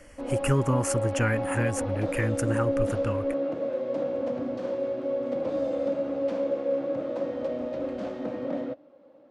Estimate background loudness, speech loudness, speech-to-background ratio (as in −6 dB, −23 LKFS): −30.0 LKFS, −29.0 LKFS, 1.0 dB